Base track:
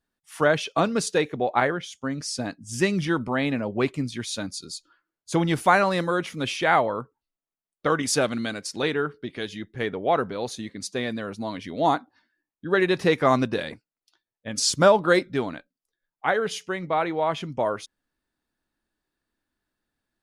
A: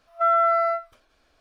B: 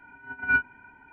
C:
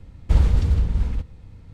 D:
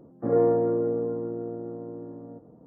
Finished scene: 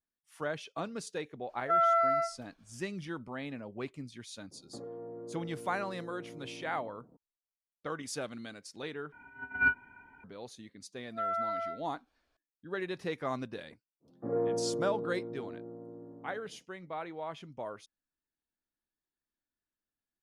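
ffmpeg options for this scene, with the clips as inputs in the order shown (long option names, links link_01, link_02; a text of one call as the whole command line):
ffmpeg -i bed.wav -i cue0.wav -i cue1.wav -i cue2.wav -i cue3.wav -filter_complex "[1:a]asplit=2[link_01][link_02];[4:a]asplit=2[link_03][link_04];[0:a]volume=-15.5dB[link_05];[link_03]acompressor=threshold=-33dB:ratio=6:attack=3.2:release=140:knee=1:detection=peak[link_06];[link_04]acontrast=82[link_07];[link_05]asplit=2[link_08][link_09];[link_08]atrim=end=9.124[link_10];[2:a]atrim=end=1.12,asetpts=PTS-STARTPTS,volume=-4dB[link_11];[link_09]atrim=start=10.236[link_12];[link_01]atrim=end=1.4,asetpts=PTS-STARTPTS,volume=-6.5dB,afade=type=in:duration=0.004:curve=hsin,afade=type=out:start_time=1.396:duration=0.004:curve=hsin,adelay=1490[link_13];[link_06]atrim=end=2.66,asetpts=PTS-STARTPTS,volume=-9dB,afade=type=in:duration=0.004:curve=hsin,afade=type=out:start_time=2.656:duration=0.004:curve=hsin,adelay=4510[link_14];[link_02]atrim=end=1.4,asetpts=PTS-STARTPTS,volume=-14dB,afade=type=in:duration=0.004:curve=hsin,afade=type=out:start_time=1.396:duration=0.004:curve=hsin,adelay=10970[link_15];[link_07]atrim=end=2.66,asetpts=PTS-STARTPTS,volume=-16.5dB,afade=type=in:duration=0.1,afade=type=out:start_time=2.56:duration=0.1,adelay=14000[link_16];[link_10][link_11]acrossfade=duration=0.004:curve1=hsin:curve2=hsin[link_17];[link_17][link_12]acrossfade=duration=0.004:curve1=hsin:curve2=hsin[link_18];[link_18][link_13][link_14][link_15][link_16]amix=inputs=5:normalize=0" out.wav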